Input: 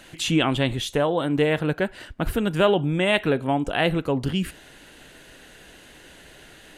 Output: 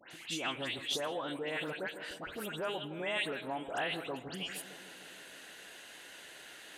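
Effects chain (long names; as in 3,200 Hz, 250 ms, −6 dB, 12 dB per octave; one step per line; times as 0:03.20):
all-pass dispersion highs, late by 115 ms, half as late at 2,300 Hz
in parallel at −2 dB: brickwall limiter −14.5 dBFS, peak gain reduction 8.5 dB
on the sum: downward compressor, threshold −22 dBFS, peak gain reduction 11 dB
high-pass filter 870 Hz 6 dB per octave
on a send: tape delay 155 ms, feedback 84%, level −10.5 dB, low-pass 1,200 Hz
on the sum: level that may rise only so fast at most 210 dB per second
level −6.5 dB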